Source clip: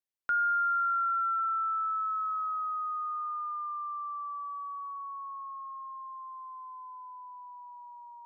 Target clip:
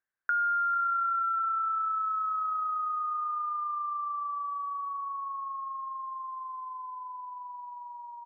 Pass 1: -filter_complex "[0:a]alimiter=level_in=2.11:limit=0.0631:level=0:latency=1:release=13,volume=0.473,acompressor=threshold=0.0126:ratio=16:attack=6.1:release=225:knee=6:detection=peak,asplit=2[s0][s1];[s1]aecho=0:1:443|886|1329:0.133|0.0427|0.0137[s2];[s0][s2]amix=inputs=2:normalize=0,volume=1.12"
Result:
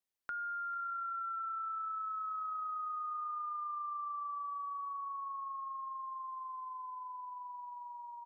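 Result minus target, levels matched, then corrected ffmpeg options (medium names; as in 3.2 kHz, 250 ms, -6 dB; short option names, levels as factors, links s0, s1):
2 kHz band -3.0 dB
-filter_complex "[0:a]alimiter=level_in=2.11:limit=0.0631:level=0:latency=1:release=13,volume=0.473,acompressor=threshold=0.0126:ratio=16:attack=6.1:release=225:knee=6:detection=peak,lowpass=f=1600:t=q:w=8,asplit=2[s0][s1];[s1]aecho=0:1:443|886|1329:0.133|0.0427|0.0137[s2];[s0][s2]amix=inputs=2:normalize=0,volume=1.12"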